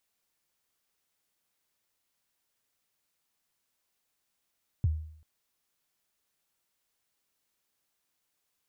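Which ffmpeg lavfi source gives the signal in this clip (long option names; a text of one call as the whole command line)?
ffmpeg -f lavfi -i "aevalsrc='0.1*pow(10,-3*t/0.62)*sin(2*PI*(130*0.028/log(78/130)*(exp(log(78/130)*min(t,0.028)/0.028)-1)+78*max(t-0.028,0)))':duration=0.39:sample_rate=44100" out.wav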